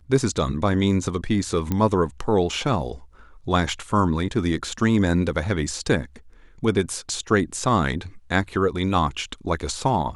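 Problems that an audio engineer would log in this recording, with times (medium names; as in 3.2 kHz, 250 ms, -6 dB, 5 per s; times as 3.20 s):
1.72 s: pop -11 dBFS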